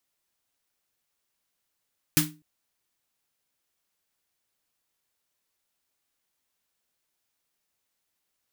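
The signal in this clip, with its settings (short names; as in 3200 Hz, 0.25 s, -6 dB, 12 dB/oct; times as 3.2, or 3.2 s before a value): snare drum length 0.25 s, tones 160 Hz, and 300 Hz, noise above 1000 Hz, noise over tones 3 dB, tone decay 0.33 s, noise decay 0.22 s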